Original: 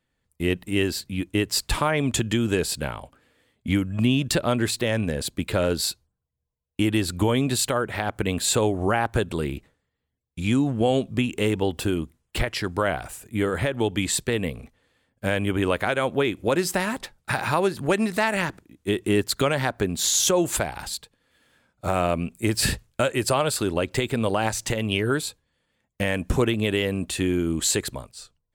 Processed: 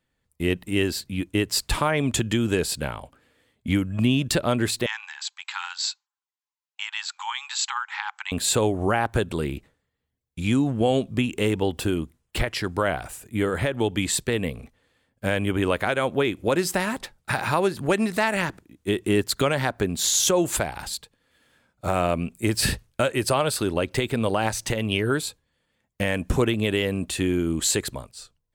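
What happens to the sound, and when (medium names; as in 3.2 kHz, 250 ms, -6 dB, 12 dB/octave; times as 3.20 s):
4.86–8.32 s: brick-wall FIR band-pass 780–7900 Hz
22.61–25.18 s: band-stop 7.3 kHz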